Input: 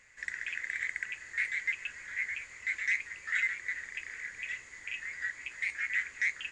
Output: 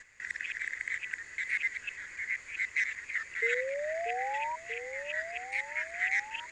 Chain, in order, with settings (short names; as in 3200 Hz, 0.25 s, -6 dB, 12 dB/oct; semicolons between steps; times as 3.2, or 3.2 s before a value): local time reversal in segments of 0.197 s; painted sound rise, 3.42–4.56, 450–980 Hz -35 dBFS; delay with a stepping band-pass 0.635 s, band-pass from 350 Hz, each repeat 0.7 oct, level -5 dB